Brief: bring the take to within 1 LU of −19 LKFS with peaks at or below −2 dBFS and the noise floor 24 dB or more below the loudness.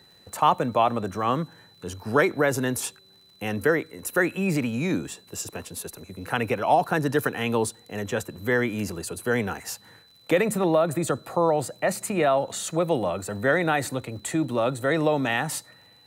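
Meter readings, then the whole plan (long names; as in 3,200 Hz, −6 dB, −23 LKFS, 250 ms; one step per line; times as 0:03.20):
crackle rate 47 per second; interfering tone 4,000 Hz; level of the tone −54 dBFS; integrated loudness −25.5 LKFS; sample peak −6.0 dBFS; target loudness −19.0 LKFS
→ click removal
notch filter 4,000 Hz, Q 30
level +6.5 dB
brickwall limiter −2 dBFS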